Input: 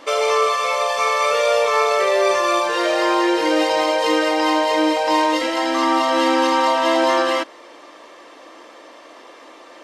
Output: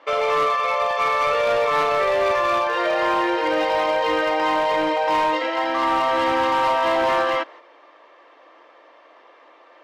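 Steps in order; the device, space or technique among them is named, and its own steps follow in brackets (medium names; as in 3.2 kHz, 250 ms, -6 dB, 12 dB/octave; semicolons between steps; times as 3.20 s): walkie-talkie (band-pass 450–2600 Hz; hard clipper -15 dBFS, distortion -16 dB; gate -41 dBFS, range -6 dB)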